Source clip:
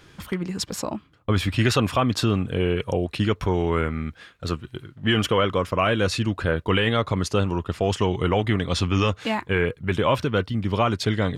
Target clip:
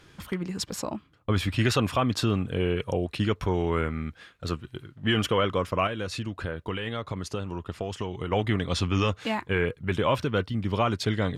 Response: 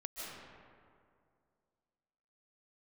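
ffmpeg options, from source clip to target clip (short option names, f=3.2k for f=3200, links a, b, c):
-filter_complex "[0:a]asplit=3[a][b][c];[a]afade=t=out:st=5.86:d=0.02[d];[b]acompressor=threshold=-25dB:ratio=6,afade=t=in:st=5.86:d=0.02,afade=t=out:st=8.31:d=0.02[e];[c]afade=t=in:st=8.31:d=0.02[f];[d][e][f]amix=inputs=3:normalize=0[g];[1:a]atrim=start_sample=2205,atrim=end_sample=4410,asetrate=28665,aresample=44100[h];[g][h]afir=irnorm=-1:irlink=0"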